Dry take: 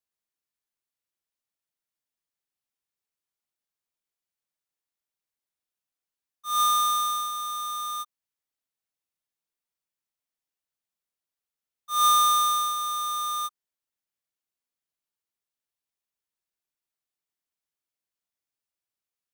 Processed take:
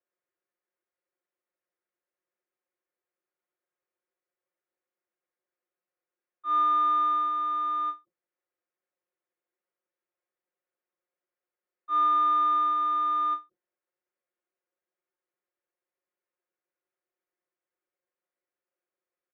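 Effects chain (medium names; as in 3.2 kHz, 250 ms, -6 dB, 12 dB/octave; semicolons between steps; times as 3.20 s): octave divider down 2 oct, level +3 dB; comb 5.6 ms, depth 67%; compression, threshold -23 dBFS, peak gain reduction 7.5 dB; cabinet simulation 350–2100 Hz, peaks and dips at 360 Hz +9 dB, 530 Hz +7 dB, 880 Hz -4 dB; endings held to a fixed fall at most 280 dB/s; trim +3 dB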